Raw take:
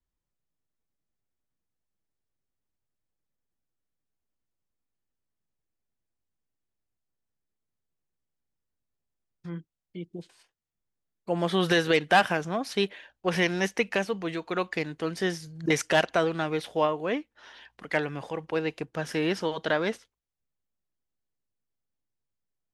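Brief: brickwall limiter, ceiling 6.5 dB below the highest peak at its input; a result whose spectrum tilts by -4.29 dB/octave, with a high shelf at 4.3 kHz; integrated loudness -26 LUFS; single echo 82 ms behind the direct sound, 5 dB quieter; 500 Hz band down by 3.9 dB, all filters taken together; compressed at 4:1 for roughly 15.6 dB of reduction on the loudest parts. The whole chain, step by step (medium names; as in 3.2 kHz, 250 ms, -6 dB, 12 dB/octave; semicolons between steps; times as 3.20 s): peaking EQ 500 Hz -5 dB; treble shelf 4.3 kHz +4.5 dB; compression 4:1, threshold -36 dBFS; peak limiter -27 dBFS; delay 82 ms -5 dB; trim +14 dB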